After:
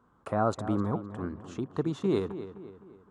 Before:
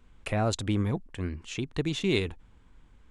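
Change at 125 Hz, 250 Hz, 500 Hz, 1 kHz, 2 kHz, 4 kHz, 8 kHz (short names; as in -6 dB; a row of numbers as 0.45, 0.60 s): -4.0, 0.0, +1.0, +4.0, -9.0, -14.0, -11.5 dB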